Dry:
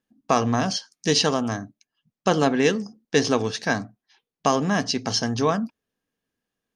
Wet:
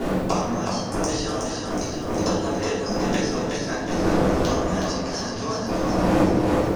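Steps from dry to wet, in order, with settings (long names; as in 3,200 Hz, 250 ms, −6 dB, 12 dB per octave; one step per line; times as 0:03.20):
wind on the microphone 420 Hz −33 dBFS
spectral tilt +3 dB per octave
gate with flip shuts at −20 dBFS, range −31 dB
in parallel at +1.5 dB: compressor whose output falls as the input rises −48 dBFS, ratio −1
on the sum: hard clipping −14.5 dBFS, distortion −24 dB
parametric band 3,100 Hz −7 dB 2.4 octaves
hum removal 78.32 Hz, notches 34
on a send: echo with a time of its own for lows and highs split 490 Hz, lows 235 ms, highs 368 ms, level −5.5 dB
on the sum: rectangular room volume 220 cubic metres, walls mixed, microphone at 3.2 metres
multiband upward and downward compressor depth 40%
level +4.5 dB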